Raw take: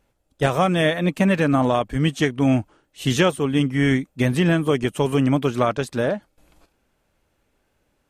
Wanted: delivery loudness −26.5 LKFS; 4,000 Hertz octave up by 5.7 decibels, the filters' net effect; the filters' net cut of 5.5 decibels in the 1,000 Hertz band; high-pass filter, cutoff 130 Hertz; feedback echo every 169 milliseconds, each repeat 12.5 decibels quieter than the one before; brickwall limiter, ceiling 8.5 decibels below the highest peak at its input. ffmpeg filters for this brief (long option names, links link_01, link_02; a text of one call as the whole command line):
ffmpeg -i in.wav -af "highpass=130,equalizer=frequency=1000:width_type=o:gain=-8.5,equalizer=frequency=4000:width_type=o:gain=8.5,alimiter=limit=-11.5dB:level=0:latency=1,aecho=1:1:169|338|507:0.237|0.0569|0.0137,volume=-3.5dB" out.wav